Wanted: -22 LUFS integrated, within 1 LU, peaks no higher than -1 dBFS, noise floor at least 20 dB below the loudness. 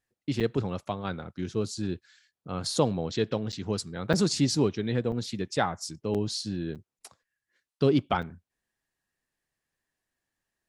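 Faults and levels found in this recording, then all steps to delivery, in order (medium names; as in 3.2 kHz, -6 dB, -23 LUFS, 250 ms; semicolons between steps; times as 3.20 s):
dropouts 7; longest dropout 7.1 ms; loudness -29.5 LUFS; peak level -9.0 dBFS; loudness target -22.0 LUFS
-> interpolate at 0.40/3.52/4.13/5.12/6.14/6.75/8.22 s, 7.1 ms; trim +7.5 dB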